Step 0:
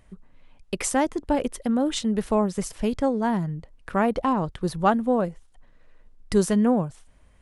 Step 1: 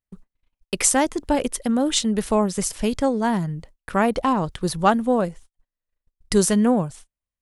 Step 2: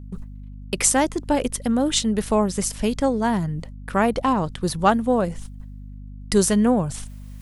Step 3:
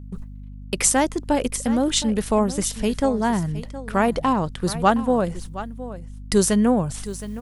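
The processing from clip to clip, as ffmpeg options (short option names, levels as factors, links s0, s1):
-af "agate=range=0.0126:threshold=0.00631:ratio=16:detection=peak,highshelf=f=2900:g=9,volume=1.26"
-af "areverse,acompressor=mode=upward:threshold=0.0631:ratio=2.5,areverse,aeval=exprs='val(0)+0.0158*(sin(2*PI*50*n/s)+sin(2*PI*2*50*n/s)/2+sin(2*PI*3*50*n/s)/3+sin(2*PI*4*50*n/s)/4+sin(2*PI*5*50*n/s)/5)':c=same"
-af "aecho=1:1:717:0.188"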